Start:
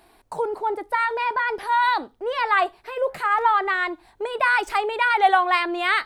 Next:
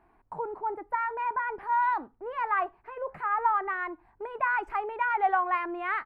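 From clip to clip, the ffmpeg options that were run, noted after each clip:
ffmpeg -i in.wav -af "firequalizer=gain_entry='entry(160,0);entry(530,-8);entry(960,-1);entry(2500,-11);entry(3600,-27)':delay=0.05:min_phase=1,volume=-4dB" out.wav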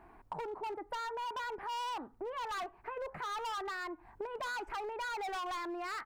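ffmpeg -i in.wav -af "asoftclip=type=hard:threshold=-31.5dB,acompressor=threshold=-45dB:ratio=6,volume=6dB" out.wav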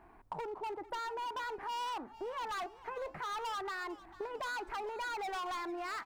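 ffmpeg -i in.wav -filter_complex "[0:a]asplit=2[link_01][link_02];[link_02]aeval=exprs='sgn(val(0))*max(abs(val(0))-0.00188,0)':channel_layout=same,volume=-11.5dB[link_03];[link_01][link_03]amix=inputs=2:normalize=0,asplit=5[link_04][link_05][link_06][link_07][link_08];[link_05]adelay=446,afreqshift=-52,volume=-18dB[link_09];[link_06]adelay=892,afreqshift=-104,volume=-23.8dB[link_10];[link_07]adelay=1338,afreqshift=-156,volume=-29.7dB[link_11];[link_08]adelay=1784,afreqshift=-208,volume=-35.5dB[link_12];[link_04][link_09][link_10][link_11][link_12]amix=inputs=5:normalize=0,volume=-2dB" out.wav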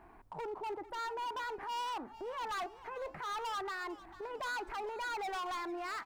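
ffmpeg -i in.wav -af "alimiter=level_in=12.5dB:limit=-24dB:level=0:latency=1:release=80,volume=-12.5dB,volume=1.5dB" out.wav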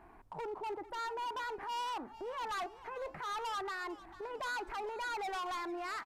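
ffmpeg -i in.wav -af "aresample=32000,aresample=44100" out.wav

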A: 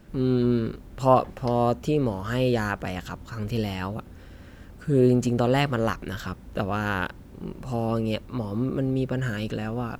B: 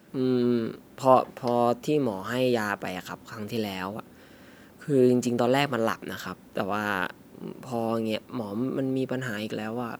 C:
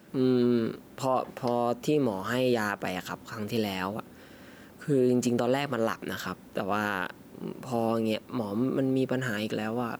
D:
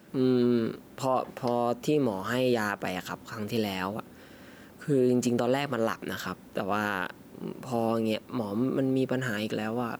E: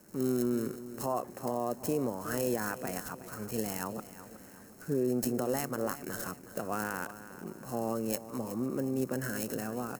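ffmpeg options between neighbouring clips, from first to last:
ffmpeg -i in.wav -af "highpass=200,highshelf=frequency=10000:gain=6" out.wav
ffmpeg -i in.wav -af "alimiter=limit=-16dB:level=0:latency=1:release=116,volume=1dB" out.wav
ffmpeg -i in.wav -af anull out.wav
ffmpeg -i in.wav -filter_complex "[0:a]acrossover=split=160|2600[link_01][link_02][link_03];[link_03]acrusher=samples=37:mix=1:aa=0.000001[link_04];[link_01][link_02][link_04]amix=inputs=3:normalize=0,aexciter=amount=13.4:drive=4.7:freq=5000,aecho=1:1:367|734|1101|1468:0.2|0.0818|0.0335|0.0138,volume=-6dB" out.wav

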